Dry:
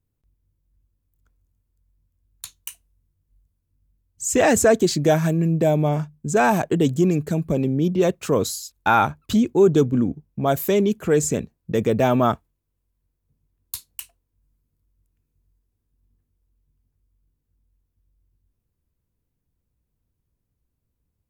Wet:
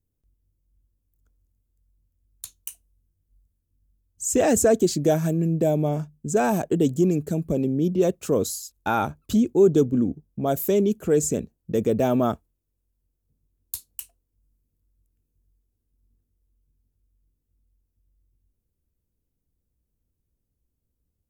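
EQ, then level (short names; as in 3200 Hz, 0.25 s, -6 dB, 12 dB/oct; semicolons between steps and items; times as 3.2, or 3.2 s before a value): graphic EQ 125/1000/2000/4000 Hz -5/-7/-8/-5 dB; 0.0 dB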